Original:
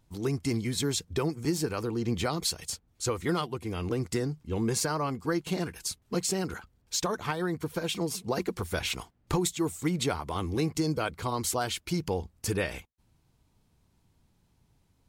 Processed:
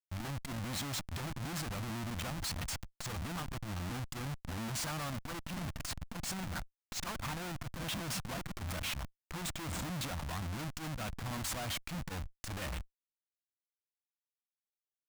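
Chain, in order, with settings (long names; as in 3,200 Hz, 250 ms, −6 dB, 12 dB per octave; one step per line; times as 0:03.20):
downward compressor 8 to 1, threshold −32 dBFS, peak gain reduction 10 dB
on a send at −11.5 dB: first-order pre-emphasis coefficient 0.8 + convolution reverb RT60 0.90 s, pre-delay 75 ms
on the sum: comparator with hysteresis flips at −41 dBFS
parametric band 410 Hz −13 dB 0.67 octaves
saturating transformer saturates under 87 Hz
level +1.5 dB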